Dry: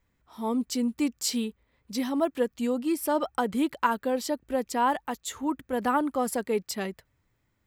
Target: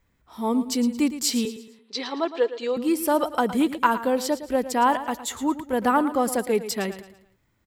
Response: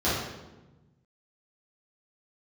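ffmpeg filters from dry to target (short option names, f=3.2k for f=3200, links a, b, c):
-filter_complex "[0:a]asettb=1/sr,asplit=3[a][b][c];[a]atrim=end=1.454[d];[b]atrim=start=1.45:end=2.77,asetpts=PTS-STARTPTS,afade=t=in:d=0.004:c=qsin,afade=t=out:st=1.316:d=0.004:c=qsin,highpass=f=370:w=0.5412,highpass=f=370:w=1.3066,equalizer=f=420:t=q:w=4:g=7,equalizer=f=610:t=q:w=4:g=-8,equalizer=f=4.1k:t=q:w=4:g=7,lowpass=f=5.6k:w=0.5412,lowpass=f=5.6k:w=1.3066[e];[c]atrim=start=2.766[f];[d][e]acrossfade=d=0.004:c1=hsin:c2=qsin[g];[g][f]acrossfade=d=0.004:c1=qsin:c2=hsin,aecho=1:1:112|224|336|448:0.224|0.0873|0.0341|0.0133,volume=4.5dB"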